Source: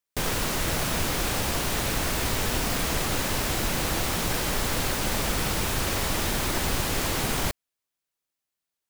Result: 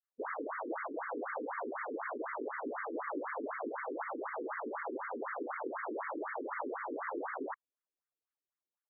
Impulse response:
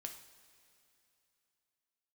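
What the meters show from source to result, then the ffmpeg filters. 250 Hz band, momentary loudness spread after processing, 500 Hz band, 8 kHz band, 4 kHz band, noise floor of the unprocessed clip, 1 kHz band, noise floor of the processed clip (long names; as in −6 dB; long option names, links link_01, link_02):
−11.5 dB, 1 LU, −7.0 dB, below −40 dB, below −40 dB, below −85 dBFS, −7.5 dB, below −85 dBFS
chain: -filter_complex "[0:a]acrossover=split=2300[link_01][link_02];[link_01]adelay=30[link_03];[link_03][link_02]amix=inputs=2:normalize=0,afftfilt=real='re*between(b*sr/1024,330*pow(1600/330,0.5+0.5*sin(2*PI*4*pts/sr))/1.41,330*pow(1600/330,0.5+0.5*sin(2*PI*4*pts/sr))*1.41)':imag='im*between(b*sr/1024,330*pow(1600/330,0.5+0.5*sin(2*PI*4*pts/sr))/1.41,330*pow(1600/330,0.5+0.5*sin(2*PI*4*pts/sr))*1.41)':win_size=1024:overlap=0.75,volume=-2dB"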